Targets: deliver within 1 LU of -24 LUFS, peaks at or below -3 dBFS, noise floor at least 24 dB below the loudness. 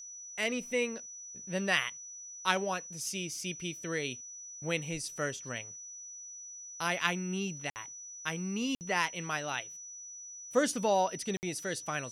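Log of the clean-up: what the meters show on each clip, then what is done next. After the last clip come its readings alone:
dropouts 3; longest dropout 59 ms; steady tone 5900 Hz; tone level -44 dBFS; loudness -34.5 LUFS; peak -11.5 dBFS; loudness target -24.0 LUFS
-> interpolate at 7.7/8.75/11.37, 59 ms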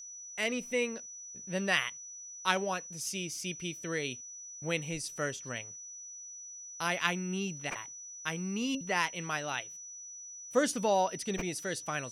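dropouts 0; steady tone 5900 Hz; tone level -44 dBFS
-> notch 5900 Hz, Q 30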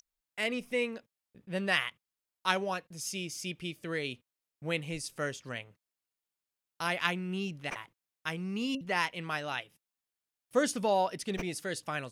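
steady tone none; loudness -34.0 LUFS; peak -11.5 dBFS; loudness target -24.0 LUFS
-> gain +10 dB; limiter -3 dBFS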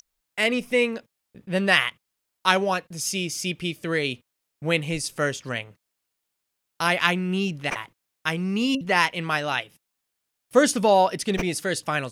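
loudness -24.0 LUFS; peak -3.0 dBFS; noise floor -80 dBFS

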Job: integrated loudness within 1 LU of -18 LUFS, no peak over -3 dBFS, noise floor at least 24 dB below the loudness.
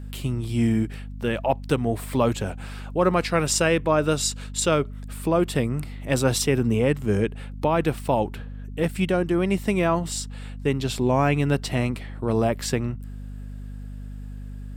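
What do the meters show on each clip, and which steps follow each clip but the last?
hum 50 Hz; harmonics up to 250 Hz; hum level -33 dBFS; loudness -24.0 LUFS; peak -6.0 dBFS; loudness target -18.0 LUFS
-> de-hum 50 Hz, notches 5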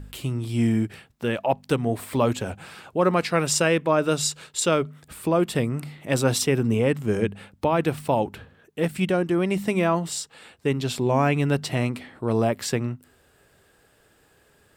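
hum none; loudness -24.5 LUFS; peak -6.5 dBFS; loudness target -18.0 LUFS
-> gain +6.5 dB; limiter -3 dBFS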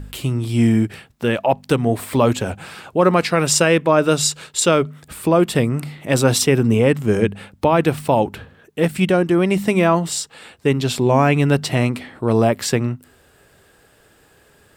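loudness -18.0 LUFS; peak -3.0 dBFS; noise floor -54 dBFS

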